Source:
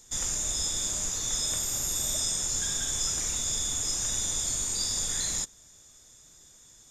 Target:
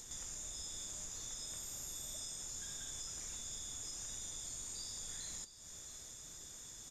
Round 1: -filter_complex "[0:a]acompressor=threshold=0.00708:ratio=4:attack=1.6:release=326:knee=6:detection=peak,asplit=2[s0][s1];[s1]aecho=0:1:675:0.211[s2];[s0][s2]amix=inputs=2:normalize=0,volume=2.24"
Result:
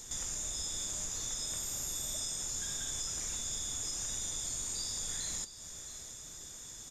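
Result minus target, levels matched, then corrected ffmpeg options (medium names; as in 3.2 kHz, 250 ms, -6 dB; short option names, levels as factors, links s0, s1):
compression: peak gain reduction -8 dB
-filter_complex "[0:a]acompressor=threshold=0.00211:ratio=4:attack=1.6:release=326:knee=6:detection=peak,asplit=2[s0][s1];[s1]aecho=0:1:675:0.211[s2];[s0][s2]amix=inputs=2:normalize=0,volume=2.24"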